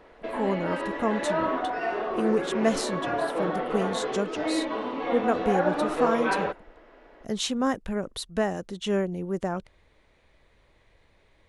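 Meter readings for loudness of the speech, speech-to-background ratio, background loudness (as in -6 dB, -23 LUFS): -29.5 LUFS, -0.5 dB, -29.0 LUFS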